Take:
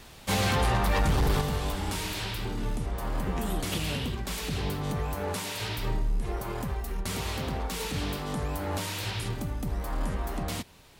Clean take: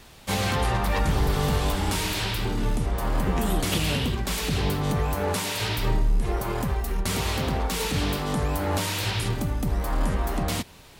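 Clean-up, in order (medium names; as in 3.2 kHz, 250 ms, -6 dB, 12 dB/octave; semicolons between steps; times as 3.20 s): clip repair -19.5 dBFS; gain correction +6 dB, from 1.41 s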